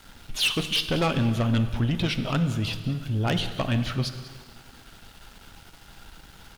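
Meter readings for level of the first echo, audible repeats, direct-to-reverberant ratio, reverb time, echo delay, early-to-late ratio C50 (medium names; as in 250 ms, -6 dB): -18.0 dB, 1, 9.0 dB, 1.9 s, 193 ms, 10.0 dB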